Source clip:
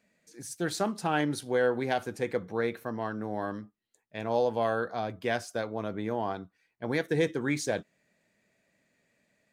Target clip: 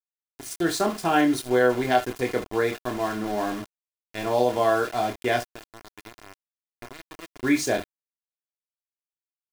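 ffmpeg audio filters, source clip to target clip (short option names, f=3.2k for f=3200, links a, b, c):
-filter_complex "[0:a]asplit=3[a][b][c];[a]afade=t=out:st=5.42:d=0.02[d];[b]acompressor=threshold=-43dB:ratio=8,afade=t=in:st=5.42:d=0.02,afade=t=out:st=7.42:d=0.02[e];[c]afade=t=in:st=7.42:d=0.02[f];[d][e][f]amix=inputs=3:normalize=0,aecho=1:1:24|66:0.596|0.2,aeval=exprs='val(0)*gte(abs(val(0)),0.0133)':c=same,aecho=1:1:2.9:0.47,volume=4.5dB"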